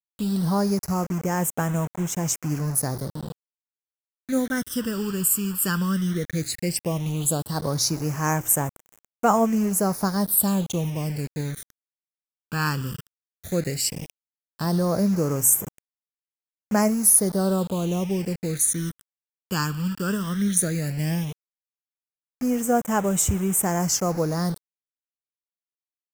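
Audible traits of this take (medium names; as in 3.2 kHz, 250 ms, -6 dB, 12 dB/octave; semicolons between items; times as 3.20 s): a quantiser's noise floor 6-bit, dither none; phasing stages 12, 0.14 Hz, lowest notch 660–4300 Hz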